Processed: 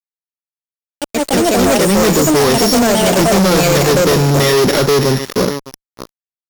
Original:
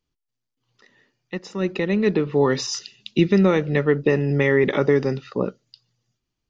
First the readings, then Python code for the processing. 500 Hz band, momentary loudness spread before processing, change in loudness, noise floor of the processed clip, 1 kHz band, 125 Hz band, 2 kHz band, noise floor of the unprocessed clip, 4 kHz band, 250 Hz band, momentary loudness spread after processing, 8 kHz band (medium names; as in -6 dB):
+8.5 dB, 11 LU, +9.0 dB, under -85 dBFS, +15.5 dB, +8.0 dB, +8.0 dB, -82 dBFS, +16.5 dB, +8.0 dB, 7 LU, no reading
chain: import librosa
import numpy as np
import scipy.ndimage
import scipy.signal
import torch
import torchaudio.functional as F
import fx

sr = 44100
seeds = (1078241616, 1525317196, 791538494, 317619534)

p1 = np.r_[np.sort(x[:len(x) // 8 * 8].reshape(-1, 8), axis=1).ravel(), x[len(x) // 8 * 8:]]
p2 = p1 + fx.echo_single(p1, sr, ms=609, db=-17.5, dry=0)
p3 = fx.echo_pitch(p2, sr, ms=89, semitones=4, count=2, db_per_echo=-3.0)
p4 = fx.fuzz(p3, sr, gain_db=28.0, gate_db=-34.0)
y = F.gain(torch.from_numpy(p4), 4.0).numpy()